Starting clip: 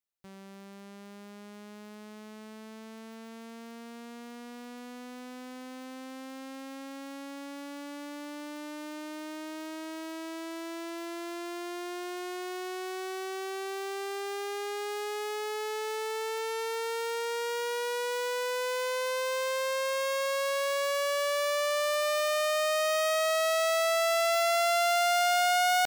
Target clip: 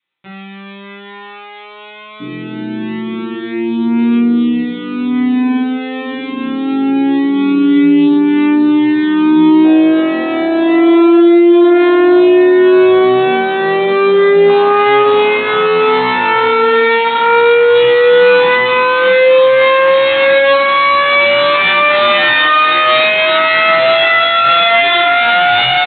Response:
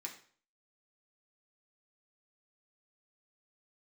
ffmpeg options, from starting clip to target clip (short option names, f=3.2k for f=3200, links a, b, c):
-filter_complex "[0:a]aemphasis=mode=production:type=75kf,bandreject=f=1.7k:w=11,afwtdn=0.0282,adynamicequalizer=threshold=0.00631:dfrequency=640:dqfactor=4.9:tfrequency=640:tqfactor=4.9:attack=5:release=100:ratio=0.375:range=3:mode=cutabove:tftype=bell,acontrast=39,aresample=8000,asoftclip=type=tanh:threshold=-32dB,aresample=44100,asplit=2[a][b];[b]adelay=17,volume=-2.5dB[c];[a][c]amix=inputs=2:normalize=0[d];[1:a]atrim=start_sample=2205,atrim=end_sample=3528[e];[d][e]afir=irnorm=-1:irlink=0,alimiter=level_in=32.5dB:limit=-1dB:release=50:level=0:latency=1,volume=-1dB"